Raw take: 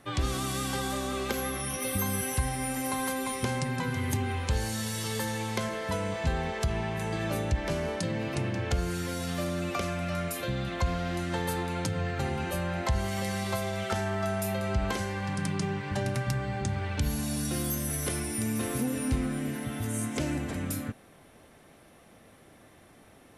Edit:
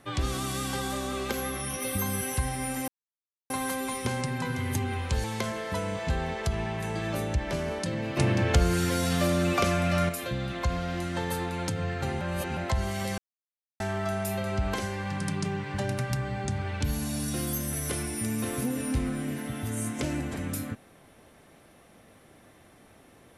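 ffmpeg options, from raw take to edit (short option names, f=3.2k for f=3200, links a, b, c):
-filter_complex "[0:a]asplit=9[a][b][c][d][e][f][g][h][i];[a]atrim=end=2.88,asetpts=PTS-STARTPTS,afade=t=out:st=2.876:d=0.004:c=hsin,apad=pad_dur=0.62[j];[b]atrim=start=2.88:end=4.622,asetpts=PTS-STARTPTS,afade=t=in:d=0.004:c=hsin[k];[c]atrim=start=5.408:end=8.342[l];[d]atrim=start=8.338:end=10.262,asetpts=PTS-STARTPTS,volume=6.5dB[m];[e]atrim=start=10.258:end=12.382[n];[f]atrim=start=12.378:end=12.742,asetpts=PTS-STARTPTS,areverse[o];[g]atrim=start=12.738:end=13.35,asetpts=PTS-STARTPTS,afade=t=out:st=0.608:d=0.004:c=hsin[p];[h]atrim=start=13.35:end=13.97,asetpts=PTS-STARTPTS,volume=0[q];[i]atrim=start=13.97,asetpts=PTS-STARTPTS,afade=t=in:d=0.004:c=hsin[r];[j][k]concat=n=2:v=0:a=1[s];[s][l]acrossfade=d=0.004:c1=hsin:c2=hsin[t];[t][m]acrossfade=d=0.004:c1=hsin:c2=hsin[u];[u][n]acrossfade=d=0.004:c1=hsin:c2=hsin[v];[v][o]acrossfade=d=0.004:c1=hsin:c2=hsin[w];[p][q][r]concat=n=3:v=0:a=1[x];[w][x]acrossfade=d=0.004:c1=hsin:c2=hsin"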